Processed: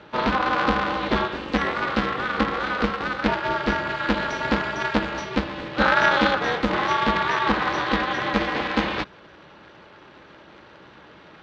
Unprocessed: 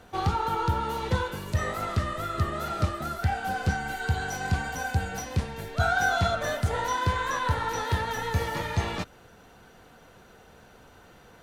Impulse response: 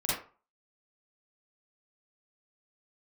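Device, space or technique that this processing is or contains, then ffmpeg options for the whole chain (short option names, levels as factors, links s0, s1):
ring modulator pedal into a guitar cabinet: -af "aeval=exprs='val(0)*sgn(sin(2*PI*130*n/s))':c=same,highpass=86,equalizer=f=95:t=q:w=4:g=-9,equalizer=f=240:t=q:w=4:g=-5,equalizer=f=700:t=q:w=4:g=-5,lowpass=f=4200:w=0.5412,lowpass=f=4200:w=1.3066,volume=2.24"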